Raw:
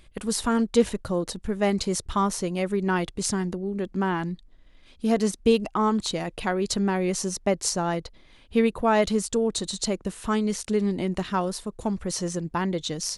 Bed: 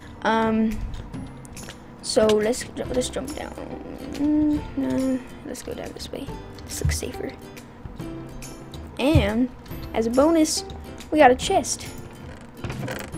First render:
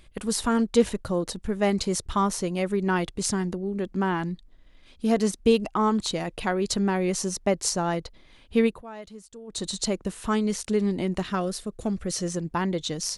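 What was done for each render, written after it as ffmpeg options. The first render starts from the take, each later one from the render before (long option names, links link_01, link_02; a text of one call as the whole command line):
ffmpeg -i in.wav -filter_complex "[0:a]asettb=1/sr,asplit=3[link_01][link_02][link_03];[link_01]atrim=end=11.354[link_04];[link_02]atrim=start=11.35:end=12.29,asetpts=PTS-STARTPTS,afade=type=in:duration=0.004:curve=qsin,afade=type=out:start_time=0.936:duration=0.004:curve=qsin,equalizer=frequency=940:width_type=o:width=0.27:gain=-14[link_05];[link_03]atrim=start=12.286[link_06];[link_04][link_05]acrossfade=duration=0.004:curve1=hsin:curve2=qsin[link_07];[link_07][link_06]acrossfade=duration=0.004:curve1=qsin:curve2=hsin,asplit=3[link_08][link_09][link_10];[link_08]atrim=end=8.83,asetpts=PTS-STARTPTS,afade=type=out:start_time=8.66:duration=0.17:silence=0.105925[link_11];[link_09]atrim=start=8.83:end=9.47,asetpts=PTS-STARTPTS,volume=-19.5dB[link_12];[link_10]atrim=start=9.47,asetpts=PTS-STARTPTS,afade=type=in:duration=0.17:silence=0.105925[link_13];[link_11][link_12][link_13]concat=n=3:v=0:a=1" out.wav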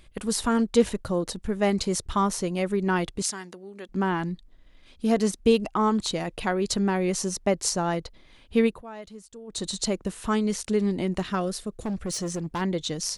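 ffmpeg -i in.wav -filter_complex "[0:a]asettb=1/sr,asplit=3[link_01][link_02][link_03];[link_01]atrim=end=3.224[link_04];[link_02]atrim=start=3.22:end=3.89,asetpts=PTS-STARTPTS,afade=type=in:duration=0.004:curve=qsin,afade=type=out:start_time=0.666:duration=0.004:curve=qsin,highpass=frequency=1300:poles=1[link_05];[link_03]atrim=start=3.886[link_06];[link_04][link_05]acrossfade=duration=0.004:curve1=hsin:curve2=qsin[link_07];[link_07][link_06]acrossfade=duration=0.004:curve1=qsin:curve2=hsin,asplit=3[link_08][link_09][link_10];[link_08]afade=type=out:start_time=11.71:duration=0.02[link_11];[link_09]asoftclip=type=hard:threshold=-25.5dB,afade=type=in:start_time=11.71:duration=0.02,afade=type=out:start_time=12.6:duration=0.02[link_12];[link_10]afade=type=in:start_time=12.6:duration=0.02[link_13];[link_11][link_12][link_13]amix=inputs=3:normalize=0" out.wav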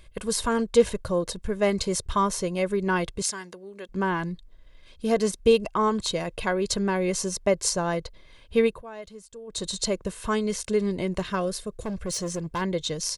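ffmpeg -i in.wav -af "aecho=1:1:1.9:0.46" out.wav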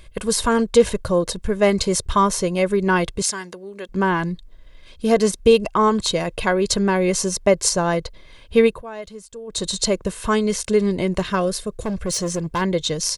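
ffmpeg -i in.wav -af "volume=6.5dB,alimiter=limit=-3dB:level=0:latency=1" out.wav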